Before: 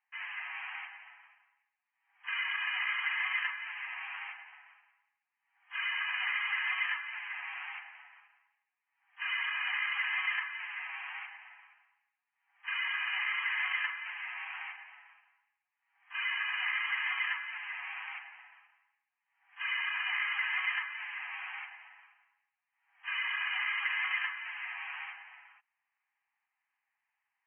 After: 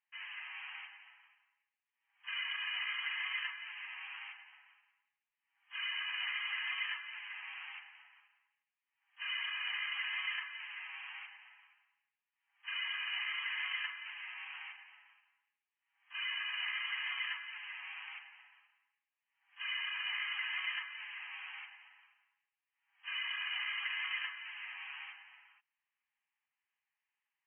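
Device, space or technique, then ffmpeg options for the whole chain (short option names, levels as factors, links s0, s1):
musical greeting card: -af "aresample=8000,aresample=44100,highpass=f=770:w=0.5412,highpass=f=770:w=1.3066,equalizer=f=3000:t=o:w=0.49:g=9,volume=0.398"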